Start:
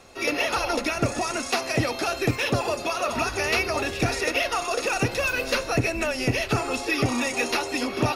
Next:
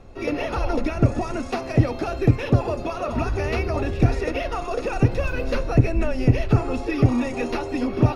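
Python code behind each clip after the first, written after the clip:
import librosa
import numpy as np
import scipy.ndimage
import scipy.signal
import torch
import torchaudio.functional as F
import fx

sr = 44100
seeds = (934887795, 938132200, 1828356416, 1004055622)

y = fx.tilt_eq(x, sr, slope=-4.0)
y = y * librosa.db_to_amplitude(-2.5)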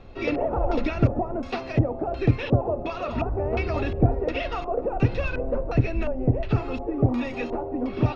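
y = fx.rider(x, sr, range_db=10, speed_s=2.0)
y = fx.filter_lfo_lowpass(y, sr, shape='square', hz=1.4, low_hz=730.0, high_hz=3700.0, q=1.6)
y = y * librosa.db_to_amplitude(-4.0)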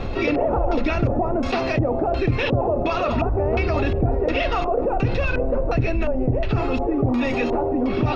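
y = fx.env_flatten(x, sr, amount_pct=70)
y = y * librosa.db_to_amplitude(-3.5)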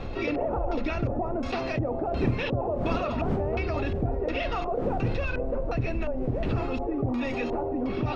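y = fx.dmg_wind(x, sr, seeds[0], corner_hz=300.0, level_db=-30.0)
y = y * librosa.db_to_amplitude(-7.5)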